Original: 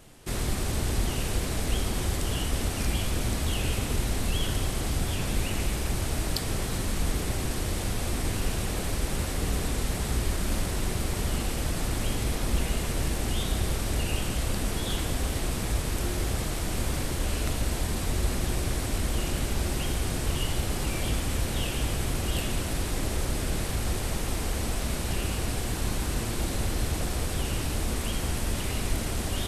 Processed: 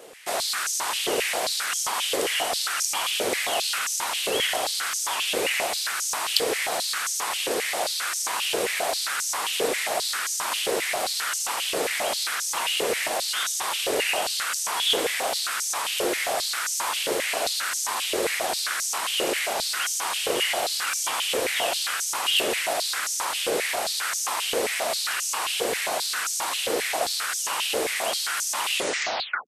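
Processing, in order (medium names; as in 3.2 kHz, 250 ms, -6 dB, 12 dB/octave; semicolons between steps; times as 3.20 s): tape stop on the ending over 0.77 s; step-sequenced high-pass 7.5 Hz 470–6100 Hz; trim +6 dB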